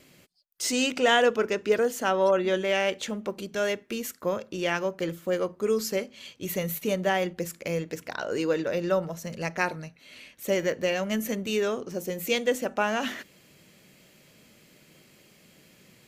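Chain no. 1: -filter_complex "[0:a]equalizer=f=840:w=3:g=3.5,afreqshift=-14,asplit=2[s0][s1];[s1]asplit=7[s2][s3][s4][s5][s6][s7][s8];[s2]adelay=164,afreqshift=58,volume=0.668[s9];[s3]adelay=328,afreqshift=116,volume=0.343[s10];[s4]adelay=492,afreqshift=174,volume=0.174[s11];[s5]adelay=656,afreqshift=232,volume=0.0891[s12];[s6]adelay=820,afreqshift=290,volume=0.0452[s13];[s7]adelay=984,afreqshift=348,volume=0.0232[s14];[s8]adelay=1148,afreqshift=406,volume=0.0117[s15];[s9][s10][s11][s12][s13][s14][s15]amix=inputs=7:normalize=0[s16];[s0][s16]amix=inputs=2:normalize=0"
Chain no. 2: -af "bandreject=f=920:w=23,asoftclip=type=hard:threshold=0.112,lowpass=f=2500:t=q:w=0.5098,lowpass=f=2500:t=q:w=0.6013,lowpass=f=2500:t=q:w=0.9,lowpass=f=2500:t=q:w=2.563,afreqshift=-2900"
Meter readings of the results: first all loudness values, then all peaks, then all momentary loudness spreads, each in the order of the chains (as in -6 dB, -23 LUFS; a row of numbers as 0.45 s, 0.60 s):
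-25.5 LUFS, -26.0 LUFS; -6.0 dBFS, -13.5 dBFS; 10 LU, 9 LU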